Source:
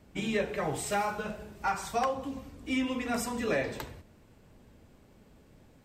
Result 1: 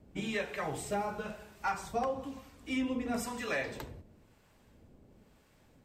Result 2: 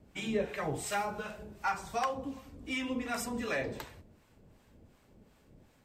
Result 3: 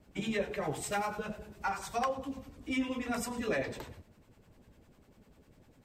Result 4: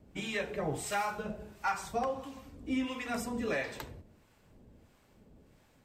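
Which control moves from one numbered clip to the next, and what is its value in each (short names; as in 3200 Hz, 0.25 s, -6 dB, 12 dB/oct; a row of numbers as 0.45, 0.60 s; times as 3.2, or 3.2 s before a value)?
harmonic tremolo, rate: 1, 2.7, 10, 1.5 Hz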